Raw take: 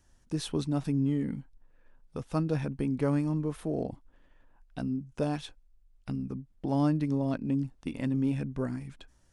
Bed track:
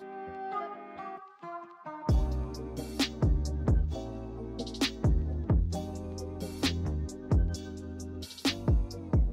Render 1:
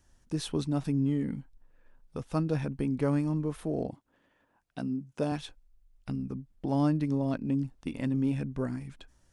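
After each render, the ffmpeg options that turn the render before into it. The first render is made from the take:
-filter_complex "[0:a]asettb=1/sr,asplit=3[s0][s1][s2];[s0]atrim=end=3.904[s3];[s1]atrim=start=3.9:end=5.32,asetpts=PTS-STARTPTS,afade=t=in:d=0.004:c=qsin,afade=t=out:st=1.416:d=0.004:c=qsin,highpass=130[s4];[s2]atrim=start=5.316[s5];[s3][s4]acrossfade=d=0.004:c1=hsin:c2=qsin[s6];[s6][s5]acrossfade=d=0.004:c1=qsin:c2=hsin"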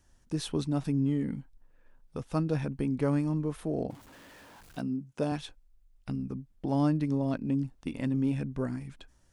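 -filter_complex "[0:a]asettb=1/sr,asplit=3[s0][s1][s2];[s0]atrim=end=3.904[s3];[s1]atrim=start=3.9:end=4.81,asetpts=PTS-STARTPTS,afade=t=in:d=0.004:c=qsin,afade=t=out:st=0.906:d=0.004:c=qsin,aeval=exprs='val(0)+0.5*0.00398*sgn(val(0))':c=same[s4];[s2]atrim=start=4.806[s5];[s3][s4]acrossfade=d=0.004:c1=hsin:c2=qsin[s6];[s6][s5]acrossfade=d=0.004:c1=qsin:c2=hsin"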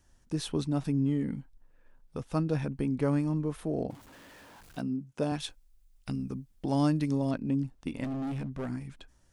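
-filter_complex "[0:a]asettb=1/sr,asplit=3[s0][s1][s2];[s0]atrim=end=5.404[s3];[s1]atrim=start=5.4:end=7.31,asetpts=PTS-STARTPTS,afade=t=in:d=0.004:c=qsin,afade=t=out:st=1.906:d=0.004:c=qsin,highshelf=f=2900:g=9.5[s4];[s2]atrim=start=7.306[s5];[s3][s4]acrossfade=d=0.004:c1=hsin:c2=qsin[s6];[s6][s5]acrossfade=d=0.004:c1=qsin:c2=hsin,asettb=1/sr,asplit=3[s7][s8][s9];[s7]atrim=end=8.044[s10];[s8]atrim=start=8.04:end=8.69,asetpts=PTS-STARTPTS,afade=t=in:d=0.004:c=qsin,afade=t=out:st=0.646:d=0.004:c=qsin,volume=37.6,asoftclip=hard,volume=0.0266[s11];[s9]atrim=start=8.686[s12];[s10][s11]acrossfade=d=0.004:c1=hsin:c2=qsin[s13];[s13][s12]acrossfade=d=0.004:c1=qsin:c2=hsin"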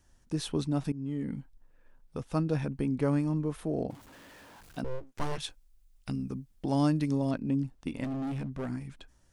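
-filter_complex "[0:a]asettb=1/sr,asplit=3[s0][s1][s2];[s0]atrim=end=4.844[s3];[s1]atrim=start=4.84:end=5.38,asetpts=PTS-STARTPTS,afade=t=in:d=0.004:c=qsin,afade=t=out:st=0.536:d=0.004:c=qsin,aeval=exprs='abs(val(0))':c=same[s4];[s2]atrim=start=5.376[s5];[s3][s4]acrossfade=d=0.004:c1=hsin:c2=qsin[s6];[s6][s5]acrossfade=d=0.004:c1=qsin:c2=hsin,asplit=2[s7][s8];[s7]atrim=end=0.92,asetpts=PTS-STARTPTS,afade=t=out:st=0.916:d=0.004:c=hsin:silence=0.149624[s9];[s8]atrim=start=0.92,asetpts=PTS-STARTPTS,afade=t=in:d=0.47:silence=0.149624[s10];[s9][s10]concat=n=2:v=0:a=1"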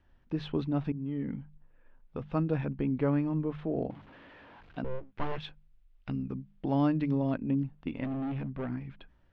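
-af "lowpass=f=3200:w=0.5412,lowpass=f=3200:w=1.3066,bandreject=f=50.03:t=h:w=4,bandreject=f=100.06:t=h:w=4,bandreject=f=150.09:t=h:w=4,bandreject=f=200.12:t=h:w=4"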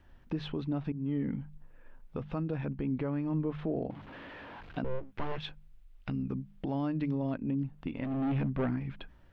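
-filter_complex "[0:a]asplit=2[s0][s1];[s1]acompressor=threshold=0.0158:ratio=6,volume=1.12[s2];[s0][s2]amix=inputs=2:normalize=0,alimiter=limit=0.0668:level=0:latency=1:release=342"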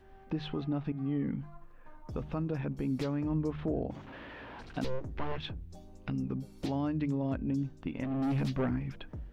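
-filter_complex "[1:a]volume=0.141[s0];[0:a][s0]amix=inputs=2:normalize=0"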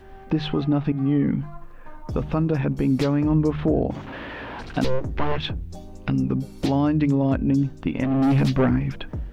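-af "volume=3.98"

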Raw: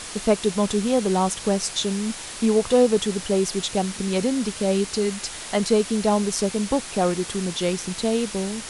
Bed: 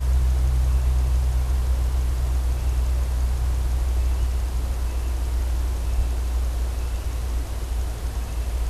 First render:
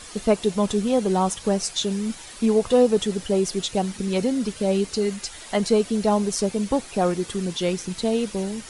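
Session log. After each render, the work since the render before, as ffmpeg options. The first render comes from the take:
-af "afftdn=nr=9:nf=-36"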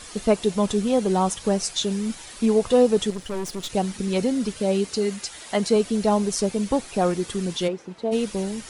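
-filter_complex "[0:a]asettb=1/sr,asplit=3[s0][s1][s2];[s0]atrim=end=3.104[s3];[s1]atrim=start=3.1:end=3.7,asetpts=PTS-STARTPTS,afade=t=in:d=0.004:c=qsin,afade=t=out:st=0.596:d=0.004:c=qsin,aeval=exprs='(tanh(20*val(0)+0.7)-tanh(0.7))/20':c=same[s4];[s2]atrim=start=3.696[s5];[s3][s4]acrossfade=d=0.004:c1=hsin:c2=qsin[s6];[s6][s5]acrossfade=d=0.004:c1=qsin:c2=hsin,asettb=1/sr,asplit=3[s7][s8][s9];[s7]atrim=end=4.604[s10];[s8]atrim=start=4.6:end=5.76,asetpts=PTS-STARTPTS,afade=t=in:d=0.004:c=qsin,afade=t=out:st=1.156:d=0.004:c=qsin,highpass=f=99:p=1[s11];[s9]atrim=start=5.756[s12];[s10][s11]acrossfade=d=0.004:c1=hsin:c2=qsin[s13];[s13][s12]acrossfade=d=0.004:c1=qsin:c2=hsin,asplit=3[s14][s15][s16];[s14]afade=t=out:st=7.67:d=0.02[s17];[s15]bandpass=f=580:t=q:w=0.81,afade=t=in:st=7.67:d=0.02,afade=t=out:st=8.11:d=0.02[s18];[s16]afade=t=in:st=8.11:d=0.02[s19];[s17][s18][s19]amix=inputs=3:normalize=0"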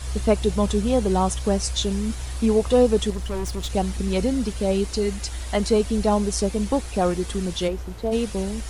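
-filter_complex "[1:a]volume=0.376[s0];[0:a][s0]amix=inputs=2:normalize=0"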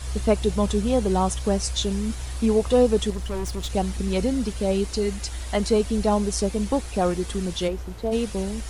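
-af "volume=0.891"

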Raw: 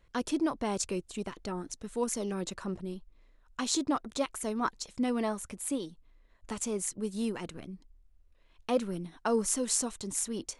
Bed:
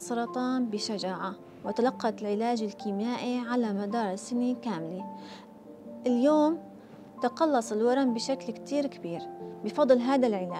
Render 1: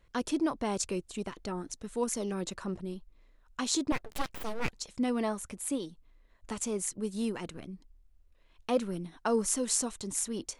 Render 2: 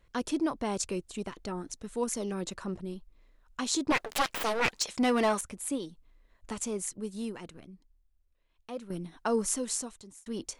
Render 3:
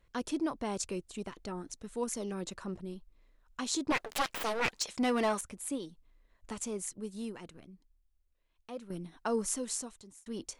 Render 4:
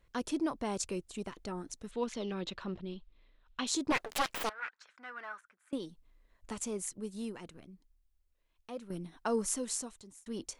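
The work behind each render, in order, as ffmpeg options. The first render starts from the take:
-filter_complex "[0:a]asettb=1/sr,asplit=3[s0][s1][s2];[s0]atrim=end=3.924[s3];[s1]atrim=start=3.92:end=4.73,asetpts=PTS-STARTPTS,afade=t=in:d=0.004:c=qsin,afade=t=out:st=0.806:d=0.004:c=qsin,aeval=exprs='abs(val(0))':c=same[s4];[s2]atrim=start=4.726[s5];[s3][s4]acrossfade=d=0.004:c1=hsin:c2=qsin[s6];[s6][s5]acrossfade=d=0.004:c1=qsin:c2=hsin"
-filter_complex "[0:a]asettb=1/sr,asplit=3[s0][s1][s2];[s0]atrim=end=3.894[s3];[s1]atrim=start=3.89:end=5.41,asetpts=PTS-STARTPTS,afade=t=in:d=0.004:c=qsin,afade=t=out:st=1.516:d=0.004:c=qsin,asplit=2[s4][s5];[s5]highpass=f=720:p=1,volume=8.91,asoftclip=type=tanh:threshold=0.15[s6];[s4][s6]amix=inputs=2:normalize=0,lowpass=f=8000:p=1,volume=0.501[s7];[s2]atrim=start=5.406[s8];[s3][s7]acrossfade=d=0.004:c1=hsin:c2=qsin[s9];[s9][s8]acrossfade=d=0.004:c1=qsin:c2=hsin,asplit=3[s10][s11][s12];[s10]atrim=end=8.9,asetpts=PTS-STARTPTS,afade=t=out:st=6.59:d=2.31:c=qua:silence=0.281838[s13];[s11]atrim=start=8.9:end=10.26,asetpts=PTS-STARTPTS,afade=t=in:d=0.004:c=hsin:silence=0.281838,afade=t=out:st=0.57:d=0.79[s14];[s12]atrim=start=10.26,asetpts=PTS-STARTPTS,afade=t=in:d=0.004:c=hsin[s15];[s13][s14][s15]concat=n=3:v=0:a=1"
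-af "volume=0.668"
-filter_complex "[0:a]asettb=1/sr,asplit=3[s0][s1][s2];[s0]atrim=end=1.914[s3];[s1]atrim=start=1.91:end=3.67,asetpts=PTS-STARTPTS,afade=t=in:d=0.004:c=qsin,afade=t=out:st=1.756:d=0.004:c=qsin,lowpass=f=3500:t=q:w=2.5[s4];[s2]atrim=start=3.666[s5];[s3][s4]acrossfade=d=0.004:c1=hsin:c2=qsin[s6];[s6][s5]acrossfade=d=0.004:c1=qsin:c2=hsin,asettb=1/sr,asplit=3[s7][s8][s9];[s7]atrim=end=4.494[s10];[s8]atrim=start=4.49:end=5.73,asetpts=PTS-STARTPTS,afade=t=in:d=0.004:c=qsin,afade=t=out:st=1.236:d=0.004:c=qsin,bandpass=f=1500:t=q:w=5.5[s11];[s9]atrim=start=5.726[s12];[s10][s11]acrossfade=d=0.004:c1=hsin:c2=qsin[s13];[s13][s12]acrossfade=d=0.004:c1=qsin:c2=hsin"

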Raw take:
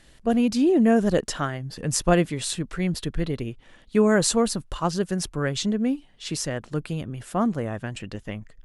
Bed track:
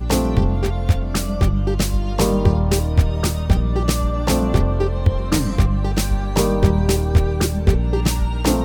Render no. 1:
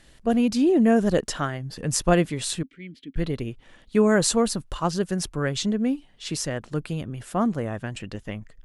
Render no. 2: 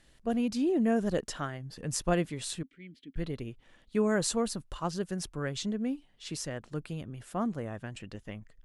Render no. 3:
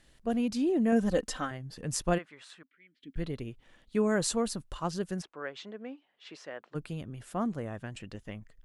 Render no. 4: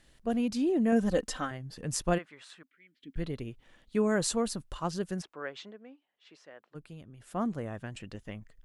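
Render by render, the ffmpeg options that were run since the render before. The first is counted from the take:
-filter_complex "[0:a]asettb=1/sr,asplit=3[s0][s1][s2];[s0]atrim=end=2.634[s3];[s1]atrim=start=2.63:end=3.16,asetpts=PTS-STARTPTS,afade=t=in:d=0.004:c=qsin,afade=t=out:st=0.526:d=0.004:c=qsin,asplit=3[s4][s5][s6];[s4]bandpass=f=270:t=q:w=8,volume=1[s7];[s5]bandpass=f=2290:t=q:w=8,volume=0.501[s8];[s6]bandpass=f=3010:t=q:w=8,volume=0.355[s9];[s7][s8][s9]amix=inputs=3:normalize=0[s10];[s2]atrim=start=3.156[s11];[s3][s10]acrossfade=d=0.004:c1=hsin:c2=qsin[s12];[s12][s11]acrossfade=d=0.004:c1=qsin:c2=hsin"
-af "volume=0.376"
-filter_complex "[0:a]asettb=1/sr,asplit=3[s0][s1][s2];[s0]atrim=end=0.924[s3];[s1]atrim=start=0.92:end=1.51,asetpts=PTS-STARTPTS,afade=t=in:d=0.004:c=qsin,afade=t=out:st=0.586:d=0.004:c=qsin,aecho=1:1:3.9:0.68,atrim=end_sample=26019[s4];[s2]atrim=start=1.506[s5];[s3][s4]acrossfade=d=0.004:c1=hsin:c2=qsin[s6];[s6][s5]acrossfade=d=0.004:c1=qsin:c2=hsin,asplit=3[s7][s8][s9];[s7]afade=t=out:st=2.17:d=0.02[s10];[s8]bandpass=f=1400:t=q:w=1.6,afade=t=in:st=2.17:d=0.02,afade=t=out:st=3:d=0.02[s11];[s9]afade=t=in:st=3:d=0.02[s12];[s10][s11][s12]amix=inputs=3:normalize=0,asplit=3[s13][s14][s15];[s13]afade=t=out:st=5.21:d=0.02[s16];[s14]highpass=490,lowpass=2600,afade=t=in:st=5.21:d=0.02,afade=t=out:st=6.74:d=0.02[s17];[s15]afade=t=in:st=6.74:d=0.02[s18];[s16][s17][s18]amix=inputs=3:normalize=0"
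-filter_complex "[0:a]asplit=3[s0][s1][s2];[s0]atrim=end=5.8,asetpts=PTS-STARTPTS,afade=t=out:st=5.59:d=0.21:silence=0.354813[s3];[s1]atrim=start=5.8:end=7.18,asetpts=PTS-STARTPTS,volume=0.355[s4];[s2]atrim=start=7.18,asetpts=PTS-STARTPTS,afade=t=in:d=0.21:silence=0.354813[s5];[s3][s4][s5]concat=n=3:v=0:a=1"

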